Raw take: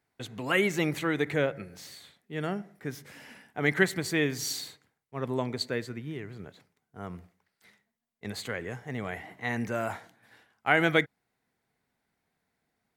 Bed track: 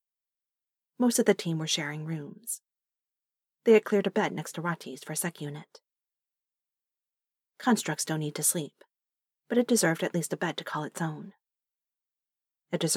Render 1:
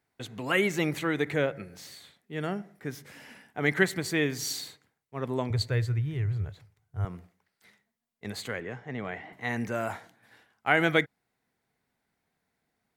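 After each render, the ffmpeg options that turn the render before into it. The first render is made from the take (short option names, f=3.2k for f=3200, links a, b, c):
-filter_complex "[0:a]asettb=1/sr,asplit=3[a][b][c];[a]atrim=end=5.504[d];[b]atrim=start=5.5:end=7.05,asetpts=PTS-STARTPTS,afade=t=in:d=0.004:c=qsin,afade=t=out:st=1.546:d=0.004:c=qsin,lowshelf=f=150:t=q:w=3:g=12.5[e];[c]atrim=start=7.046[f];[d][e]acrossfade=d=0.004:c1=hsin:c2=qsin[g];[g][f]acrossfade=d=0.004:c1=qsin:c2=hsin,asettb=1/sr,asplit=3[h][i][j];[h]atrim=end=8.604[k];[i]atrim=start=8.6:end=9.33,asetpts=PTS-STARTPTS,afade=t=in:d=0.004:c=qsin,afade=t=out:st=0.726:d=0.004:c=qsin,highpass=110,lowpass=4k[l];[j]atrim=start=9.326[m];[k][l]acrossfade=d=0.004:c1=hsin:c2=qsin[n];[n][m]acrossfade=d=0.004:c1=qsin:c2=hsin"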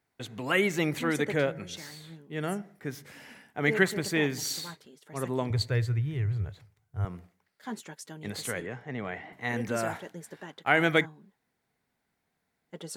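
-filter_complex "[1:a]volume=-13.5dB[a];[0:a][a]amix=inputs=2:normalize=0"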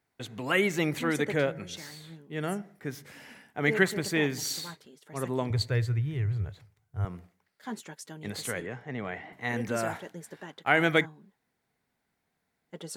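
-af anull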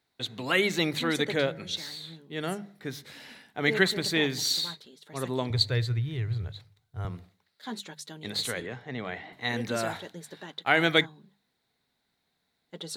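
-af "equalizer=f=3.9k:t=o:w=0.45:g=14.5,bandreject=f=50:t=h:w=6,bandreject=f=100:t=h:w=6,bandreject=f=150:t=h:w=6,bandreject=f=200:t=h:w=6"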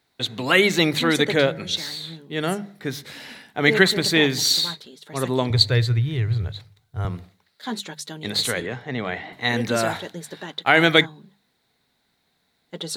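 -af "volume=8dB,alimiter=limit=-1dB:level=0:latency=1"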